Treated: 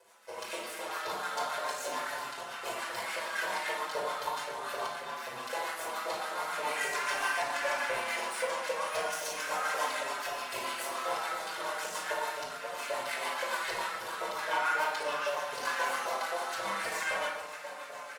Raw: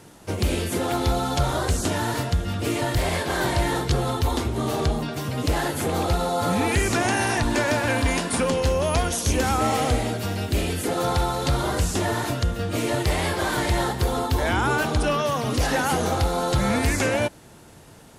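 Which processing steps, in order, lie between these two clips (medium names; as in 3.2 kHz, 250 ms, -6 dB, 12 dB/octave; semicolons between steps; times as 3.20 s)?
9.76–10.93 s: comb 3.1 ms, depth 85%; echo that smears into a reverb 550 ms, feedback 76%, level -13 dB; rotary cabinet horn 7 Hz; half-wave rectifier; LFO high-pass saw up 3.8 Hz 600–1800 Hz; simulated room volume 2100 m³, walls furnished, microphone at 5.1 m; endless flanger 5.5 ms -0.37 Hz; trim -5.5 dB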